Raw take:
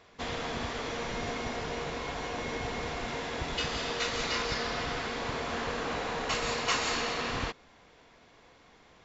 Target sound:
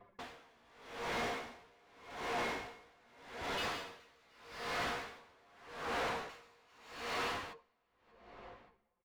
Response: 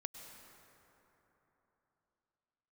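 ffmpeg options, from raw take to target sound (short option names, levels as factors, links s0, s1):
-filter_complex "[0:a]bandreject=f=153.2:t=h:w=4,bandreject=f=306.4:t=h:w=4,bandreject=f=459.6:t=h:w=4,bandreject=f=612.8:t=h:w=4,bandreject=f=766:t=h:w=4,bandreject=f=919.2:t=h:w=4,bandreject=f=1072.4:t=h:w=4,anlmdn=0.0398,areverse,acompressor=threshold=0.00447:ratio=10,areverse,flanger=delay=9.8:depth=9.7:regen=20:speed=0.54:shape=sinusoidal,asplit=2[s0][s1];[s1]highpass=f=720:p=1,volume=35.5,asoftclip=type=tanh:threshold=0.00891[s2];[s0][s2]amix=inputs=2:normalize=0,lowpass=f=2000:p=1,volume=0.501,asplit=2[s3][s4];[s4]adelay=582,lowpass=f=4100:p=1,volume=0.178,asplit=2[s5][s6];[s6]adelay=582,lowpass=f=4100:p=1,volume=0.53,asplit=2[s7][s8];[s8]adelay=582,lowpass=f=4100:p=1,volume=0.53,asplit=2[s9][s10];[s10]adelay=582,lowpass=f=4100:p=1,volume=0.53,asplit=2[s11][s12];[s12]adelay=582,lowpass=f=4100:p=1,volume=0.53[s13];[s3][s5][s7][s9][s11][s13]amix=inputs=6:normalize=0,aeval=exprs='val(0)*pow(10,-31*(0.5-0.5*cos(2*PI*0.83*n/s))/20)':c=same,volume=4.22"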